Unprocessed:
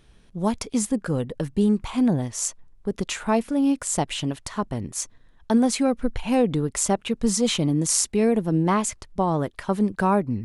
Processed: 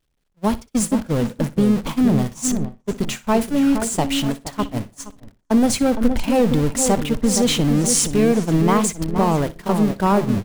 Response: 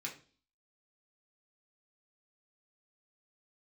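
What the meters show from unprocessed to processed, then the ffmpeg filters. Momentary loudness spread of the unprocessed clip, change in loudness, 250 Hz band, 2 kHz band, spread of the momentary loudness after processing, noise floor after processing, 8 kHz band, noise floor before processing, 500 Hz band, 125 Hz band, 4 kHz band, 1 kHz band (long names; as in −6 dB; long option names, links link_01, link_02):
8 LU, +4.5 dB, +4.5 dB, +3.5 dB, 9 LU, −66 dBFS, +3.5 dB, −55 dBFS, +4.0 dB, +5.5 dB, +4.5 dB, +3.5 dB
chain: -filter_complex "[0:a]aeval=exprs='val(0)+0.5*0.0596*sgn(val(0))':channel_layout=same,lowshelf=frequency=61:gain=3.5,asplit=2[link_01][link_02];[link_02]adelay=469,lowpass=frequency=1200:poles=1,volume=-6dB,asplit=2[link_03][link_04];[link_04]adelay=469,lowpass=frequency=1200:poles=1,volume=0.51,asplit=2[link_05][link_06];[link_06]adelay=469,lowpass=frequency=1200:poles=1,volume=0.51,asplit=2[link_07][link_08];[link_08]adelay=469,lowpass=frequency=1200:poles=1,volume=0.51,asplit=2[link_09][link_10];[link_10]adelay=469,lowpass=frequency=1200:poles=1,volume=0.51,asplit=2[link_11][link_12];[link_12]adelay=469,lowpass=frequency=1200:poles=1,volume=0.51[link_13];[link_03][link_05][link_07][link_09][link_11][link_13]amix=inputs=6:normalize=0[link_14];[link_01][link_14]amix=inputs=2:normalize=0,agate=range=-45dB:threshold=-21dB:ratio=16:detection=peak,asplit=2[link_15][link_16];[link_16]aecho=0:1:61|122:0.126|0.0264[link_17];[link_15][link_17]amix=inputs=2:normalize=0,volume=1.5dB"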